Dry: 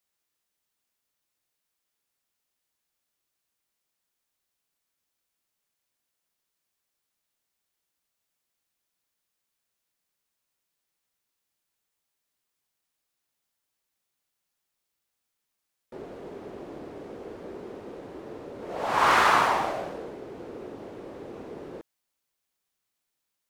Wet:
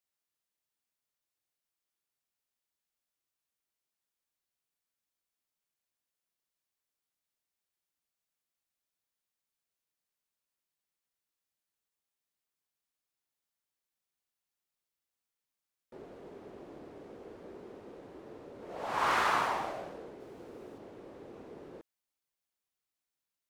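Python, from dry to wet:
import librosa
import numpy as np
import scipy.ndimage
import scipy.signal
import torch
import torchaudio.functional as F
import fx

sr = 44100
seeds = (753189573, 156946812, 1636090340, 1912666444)

y = fx.high_shelf(x, sr, hz=6000.0, db=7.5, at=(20.2, 20.78))
y = y * librosa.db_to_amplitude(-8.5)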